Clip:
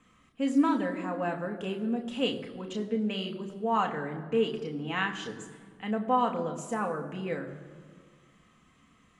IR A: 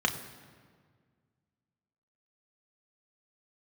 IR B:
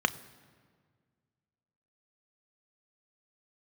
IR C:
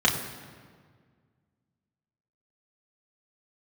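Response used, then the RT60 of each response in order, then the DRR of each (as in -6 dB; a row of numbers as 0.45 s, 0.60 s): A; 1.8 s, 1.8 s, 1.8 s; 3.0 dB, 11.5 dB, -2.5 dB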